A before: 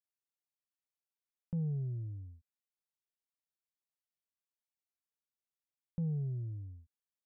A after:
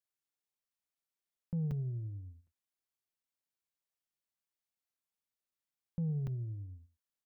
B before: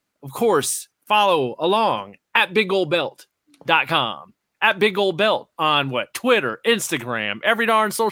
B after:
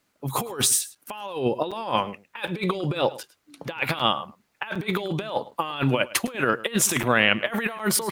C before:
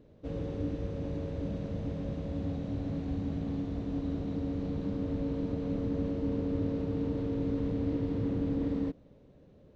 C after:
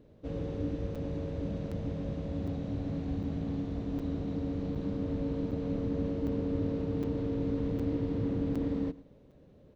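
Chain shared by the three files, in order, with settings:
compressor whose output falls as the input rises −24 dBFS, ratio −0.5
on a send: single-tap delay 106 ms −19 dB
on the sum: regular buffer underruns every 0.76 s, samples 256, zero, from 0:00.95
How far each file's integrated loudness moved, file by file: 0.0, −5.0, 0.0 LU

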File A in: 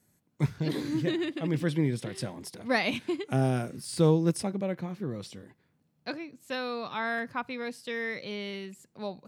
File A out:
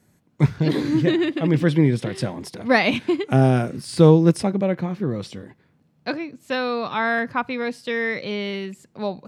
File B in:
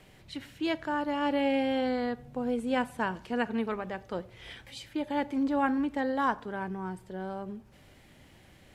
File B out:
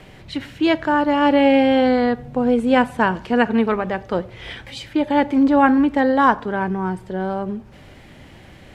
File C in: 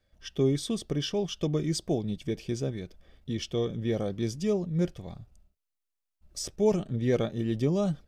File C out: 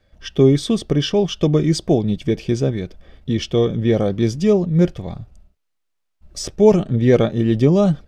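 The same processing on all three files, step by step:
low-pass filter 3,700 Hz 6 dB per octave
normalise the peak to −2 dBFS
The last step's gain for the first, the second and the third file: +10.0, +13.5, +12.5 decibels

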